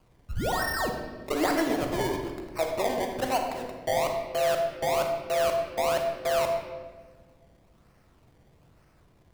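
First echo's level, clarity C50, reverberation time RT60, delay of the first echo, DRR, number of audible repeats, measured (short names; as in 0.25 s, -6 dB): none, 4.5 dB, 1.5 s, none, 3.0 dB, none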